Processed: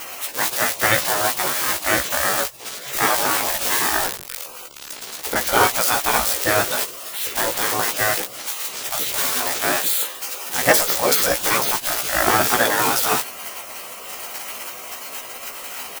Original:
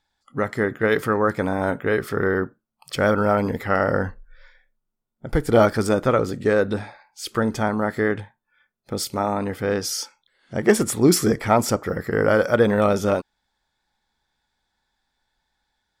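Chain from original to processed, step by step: switching spikes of -15.5 dBFS; spectral gate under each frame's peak -15 dB weak; bell 500 Hz +5.5 dB 1.4 oct; doubler 16 ms -3 dB; gain +7 dB

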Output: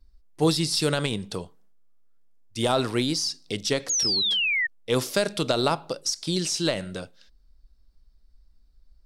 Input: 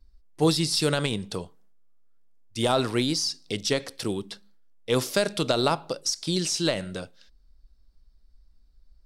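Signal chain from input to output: 3.84–4.31 compressor 2.5:1, threshold -33 dBFS, peak gain reduction 6.5 dB; 3.89–4.67 painted sound fall 1800–6900 Hz -24 dBFS

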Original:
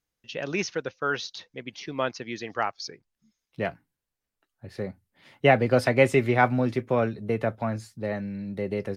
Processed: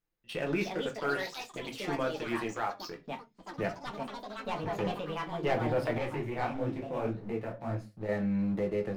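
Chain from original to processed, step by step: bell 7200 Hz -11.5 dB 1.6 oct; sample leveller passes 2; compressor 3:1, threshold -34 dBFS, peak gain reduction 17 dB; transient shaper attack -7 dB, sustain -2 dB; reverb RT60 0.30 s, pre-delay 6 ms, DRR 1.5 dB; echoes that change speed 0.392 s, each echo +5 st, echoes 3, each echo -6 dB; 5.98–8.09 detuned doubles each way 59 cents

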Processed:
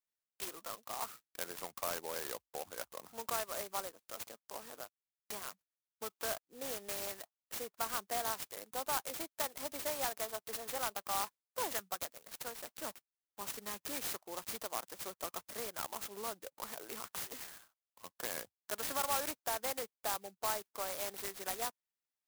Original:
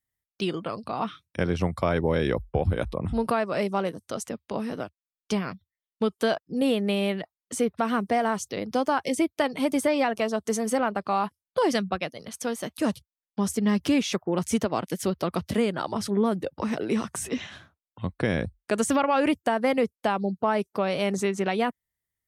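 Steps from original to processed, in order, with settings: HPF 910 Hz 12 dB/oct; clock jitter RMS 0.12 ms; gain -7 dB

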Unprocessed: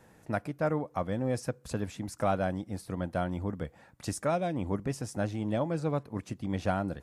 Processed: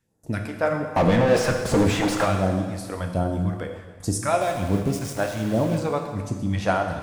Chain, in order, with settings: gate with hold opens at -45 dBFS; phaser stages 2, 1.3 Hz, lowest notch 120–2400 Hz; 0.96–2.25 overdrive pedal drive 36 dB, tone 1100 Hz, clips at -19 dBFS; 4.41–5.78 sample gate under -41.5 dBFS; plate-style reverb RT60 1.5 s, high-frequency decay 1×, DRR 3 dB; gain +8 dB

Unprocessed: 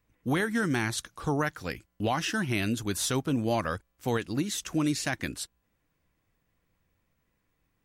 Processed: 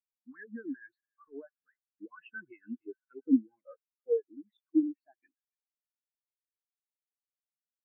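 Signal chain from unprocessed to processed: HPF 110 Hz 6 dB/oct; tone controls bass -8 dB, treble -13 dB; limiter -20.5 dBFS, peak gain reduction 5.5 dB; overdrive pedal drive 17 dB, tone 5400 Hz, clips at -20.5 dBFS; phaser stages 4, 2.2 Hz, lowest notch 570–3200 Hz; thin delay 0.286 s, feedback 75%, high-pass 1500 Hz, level -8.5 dB; spectral expander 4:1; gain +4.5 dB

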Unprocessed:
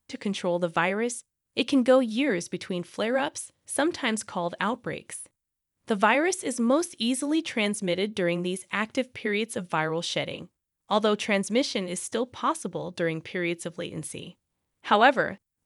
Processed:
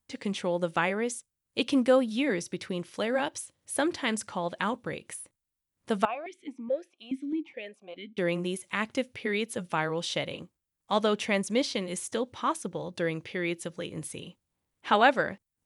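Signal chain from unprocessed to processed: 6.05–8.18 vowel sequencer 4.7 Hz; gain -2.5 dB

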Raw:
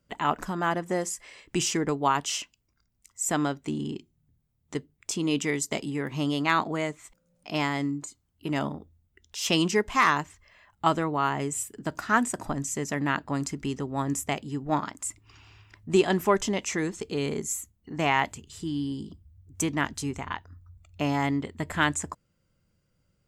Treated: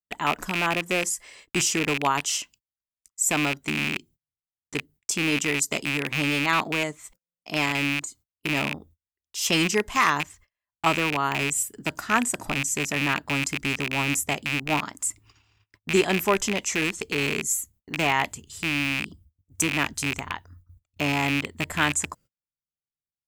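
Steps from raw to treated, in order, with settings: rattling part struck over -37 dBFS, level -15 dBFS; high shelf 7000 Hz +10.5 dB; gate -50 dBFS, range -35 dB

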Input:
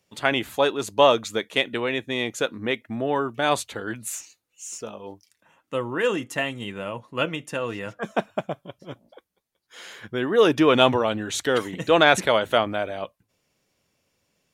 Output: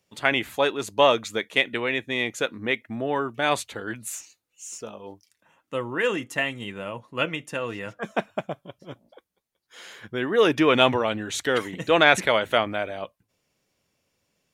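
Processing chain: dynamic EQ 2100 Hz, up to +6 dB, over -39 dBFS, Q 1.9; gain -2 dB

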